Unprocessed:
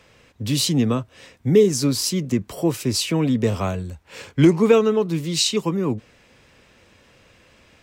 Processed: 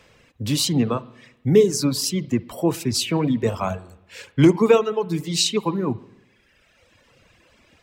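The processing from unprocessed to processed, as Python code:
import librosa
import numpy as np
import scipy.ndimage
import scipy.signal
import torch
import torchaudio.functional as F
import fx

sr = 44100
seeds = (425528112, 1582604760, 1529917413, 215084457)

y = fx.rev_spring(x, sr, rt60_s=1.0, pass_ms=(52, 58), chirp_ms=30, drr_db=8.5)
y = fx.dynamic_eq(y, sr, hz=920.0, q=2.0, threshold_db=-40.0, ratio=4.0, max_db=4)
y = fx.dereverb_blind(y, sr, rt60_s=1.5)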